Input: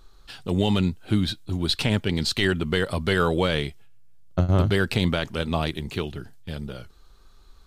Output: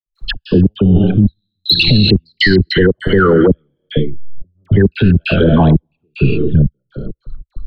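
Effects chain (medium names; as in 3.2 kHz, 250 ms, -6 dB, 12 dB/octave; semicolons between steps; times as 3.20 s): resonances exaggerated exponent 3; dynamic bell 4.9 kHz, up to +8 dB, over -45 dBFS, Q 0.9; gated-style reverb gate 430 ms flat, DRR 10 dB; trance gate ".x.x.xxx...xxx." 100 bpm -60 dB; in parallel at -11.5 dB: saturation -13 dBFS, distortion -18 dB; on the sum: peaking EQ 69 Hz -11 dB 0.55 oct; phase dispersion lows, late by 66 ms, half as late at 1 kHz; reverse; compression 10:1, threshold -26 dBFS, peak gain reduction 15.5 dB; reverse; loudness maximiser +26.5 dB; trim -1 dB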